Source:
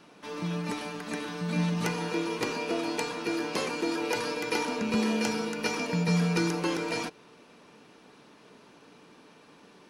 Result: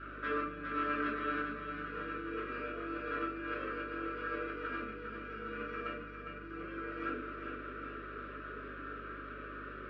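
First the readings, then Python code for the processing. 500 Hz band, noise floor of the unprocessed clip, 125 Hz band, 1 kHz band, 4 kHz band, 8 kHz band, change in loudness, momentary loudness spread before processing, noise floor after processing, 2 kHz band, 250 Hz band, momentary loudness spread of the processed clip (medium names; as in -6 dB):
-9.0 dB, -56 dBFS, -18.0 dB, -3.5 dB, -18.0 dB, under -40 dB, -9.5 dB, 8 LU, -46 dBFS, -4.0 dB, -12.0 dB, 9 LU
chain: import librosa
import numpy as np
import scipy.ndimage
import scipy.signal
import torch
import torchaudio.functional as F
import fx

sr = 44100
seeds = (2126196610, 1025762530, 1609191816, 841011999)

y = scipy.signal.sosfilt(scipy.signal.cheby1(2, 1.0, [490.0, 1400.0], 'bandstop', fs=sr, output='sos'), x)
y = fx.peak_eq(y, sr, hz=1400.0, db=6.0, octaves=0.52)
y = fx.hum_notches(y, sr, base_hz=50, count=9)
y = fx.over_compress(y, sr, threshold_db=-41.0, ratio=-1.0)
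y = fx.cabinet(y, sr, low_hz=310.0, low_slope=24, high_hz=2200.0, hz=(330.0, 490.0, 730.0, 1300.0, 2000.0), db=(-5, -7, 4, 5, -7))
y = fx.echo_feedback(y, sr, ms=405, feedback_pct=57, wet_db=-7.0)
y = fx.room_shoebox(y, sr, seeds[0], volume_m3=380.0, walls='furnished', distance_m=2.8)
y = fx.add_hum(y, sr, base_hz=50, snr_db=13)
y = y * librosa.db_to_amplitude(-1.5)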